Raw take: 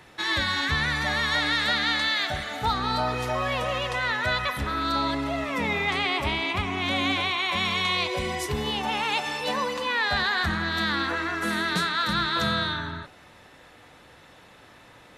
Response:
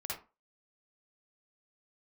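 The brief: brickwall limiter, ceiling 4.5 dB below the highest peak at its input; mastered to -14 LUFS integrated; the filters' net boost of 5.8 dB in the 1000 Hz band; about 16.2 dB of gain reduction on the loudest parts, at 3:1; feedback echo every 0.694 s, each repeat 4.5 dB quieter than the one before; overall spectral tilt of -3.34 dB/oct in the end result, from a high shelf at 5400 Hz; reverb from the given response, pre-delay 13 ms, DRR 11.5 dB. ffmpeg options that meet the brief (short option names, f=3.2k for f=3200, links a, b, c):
-filter_complex "[0:a]equalizer=f=1k:t=o:g=7,highshelf=f=5.4k:g=5.5,acompressor=threshold=-39dB:ratio=3,alimiter=level_in=4.5dB:limit=-24dB:level=0:latency=1,volume=-4.5dB,aecho=1:1:694|1388|2082|2776|3470|4164|4858|5552|6246:0.596|0.357|0.214|0.129|0.0772|0.0463|0.0278|0.0167|0.01,asplit=2[a][b];[1:a]atrim=start_sample=2205,adelay=13[c];[b][c]afir=irnorm=-1:irlink=0,volume=-12.5dB[d];[a][d]amix=inputs=2:normalize=0,volume=21.5dB"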